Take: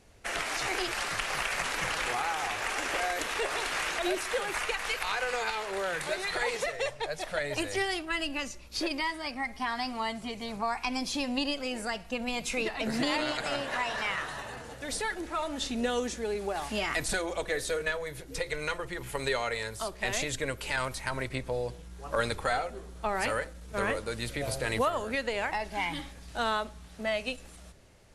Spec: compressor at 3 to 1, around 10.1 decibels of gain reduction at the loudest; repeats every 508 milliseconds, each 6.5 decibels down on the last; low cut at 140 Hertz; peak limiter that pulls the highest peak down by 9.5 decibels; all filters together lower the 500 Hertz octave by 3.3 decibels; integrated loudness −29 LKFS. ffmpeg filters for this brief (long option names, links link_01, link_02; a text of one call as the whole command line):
ffmpeg -i in.wav -af "highpass=140,equalizer=frequency=500:width_type=o:gain=-4,acompressor=threshold=-40dB:ratio=3,alimiter=level_in=7.5dB:limit=-24dB:level=0:latency=1,volume=-7.5dB,aecho=1:1:508|1016|1524|2032|2540|3048:0.473|0.222|0.105|0.0491|0.0231|0.0109,volume=12dB" out.wav